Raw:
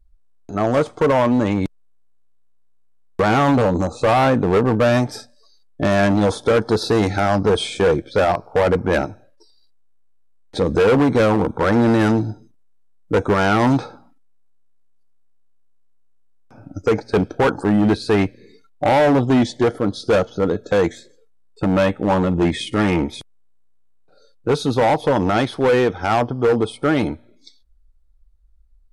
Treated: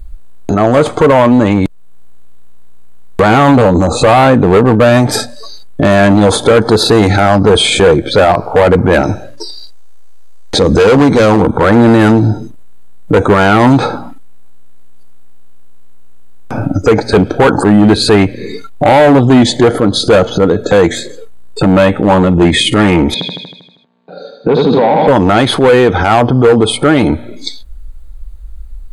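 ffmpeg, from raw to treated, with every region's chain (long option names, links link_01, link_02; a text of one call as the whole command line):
ffmpeg -i in.wav -filter_complex "[0:a]asettb=1/sr,asplit=3[link_01][link_02][link_03];[link_01]atrim=end=9.034[link_04];[link_02]atrim=start=9.03:end=11.41,asetpts=PTS-STARTPTS,afade=type=in:duration=0.004:curve=qsin,afade=type=out:start_time=2.376:duration=0.004:curve=qsin,equalizer=frequency=5600:width=1.9:gain=10.5,bandreject=frequency=60:width_type=h:width=6,bandreject=frequency=120:width_type=h:width=6,bandreject=frequency=180:width_type=h:width=6,bandreject=frequency=240:width_type=h:width=6,bandreject=frequency=300:width_type=h:width=6,bandreject=frequency=360:width_type=h:width=6[link_05];[link_03]atrim=start=11.406[link_06];[link_04][link_05]acrossfade=duration=0.004:curve1=hsin:curve2=qsin[link_07];[link_07][link_06]acrossfade=duration=0.004:curve1=qsin:curve2=hsin,asettb=1/sr,asplit=3[link_08][link_09][link_10];[link_08]atrim=end=23.144[link_11];[link_09]atrim=start=23.14:end=25.08,asetpts=PTS-STARTPTS,afade=type=in:duration=0.004:curve=qsin,afade=type=out:start_time=1.936:duration=0.004:curve=qsin,highpass=frequency=170:width=0.5412,highpass=frequency=170:width=1.3066,equalizer=frequency=180:width_type=q:width=4:gain=9,equalizer=frequency=340:width_type=q:width=4:gain=-4,equalizer=frequency=1300:width_type=q:width=4:gain=-8,equalizer=frequency=2000:width_type=q:width=4:gain=-6,equalizer=frequency=2900:width_type=q:width=4:gain=-7,lowpass=frequency=3600:width=0.5412,lowpass=frequency=3600:width=1.3066,aecho=1:1:79|158|237|316|395|474|553|632:0.562|0.321|0.183|0.104|0.0594|0.0338|0.0193|0.011,atrim=end_sample=85554[link_12];[link_10]atrim=start=25.076[link_13];[link_11][link_12]acrossfade=duration=0.004:curve1=hsin:curve2=qsin[link_14];[link_14][link_13]acrossfade=duration=0.004:curve1=qsin:curve2=hsin,equalizer=frequency=5500:width_type=o:width=0.21:gain=-12,acompressor=threshold=-37dB:ratio=1.5,alimiter=level_in=28.5dB:limit=-1dB:release=50:level=0:latency=1,volume=-1dB" out.wav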